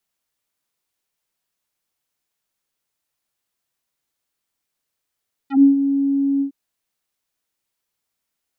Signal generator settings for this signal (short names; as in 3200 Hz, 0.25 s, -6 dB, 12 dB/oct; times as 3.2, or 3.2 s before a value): synth note square C#4 24 dB/oct, low-pass 320 Hz, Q 1.3, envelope 4 oct, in 0.07 s, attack 0.125 s, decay 0.13 s, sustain -9.5 dB, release 0.10 s, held 0.91 s